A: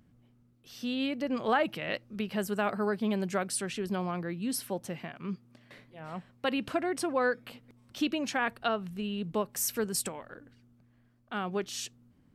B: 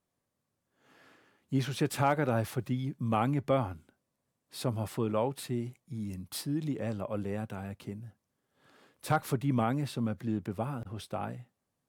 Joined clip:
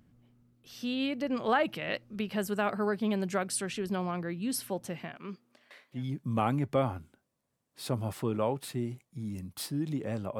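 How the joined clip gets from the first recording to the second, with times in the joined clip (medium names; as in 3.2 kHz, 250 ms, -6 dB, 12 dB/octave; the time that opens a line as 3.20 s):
A
5.16–6.05 s: high-pass 210 Hz -> 1.1 kHz
5.98 s: go over to B from 2.73 s, crossfade 0.14 s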